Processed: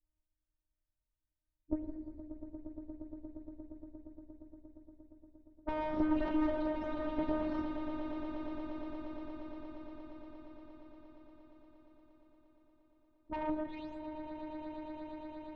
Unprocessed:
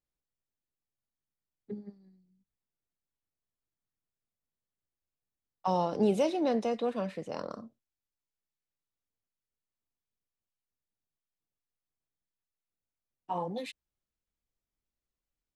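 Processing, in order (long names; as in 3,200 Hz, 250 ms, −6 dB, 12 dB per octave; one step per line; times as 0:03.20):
every frequency bin delayed by itself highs late, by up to 287 ms
phases set to zero 308 Hz
in parallel at −2 dB: downward compressor, threshold −46 dBFS, peak gain reduction 19 dB
on the sum: gain into a clipping stage and back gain 33 dB
RIAA equalisation playback
harmonic generator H 2 −7 dB, 7 −22 dB, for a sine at −18.5 dBFS
high-frequency loss of the air 180 metres
echo that builds up and dies away 117 ms, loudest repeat 8, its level −13 dB
on a send at −10 dB: convolution reverb RT60 1.7 s, pre-delay 77 ms
on the sum: level +2.5 dB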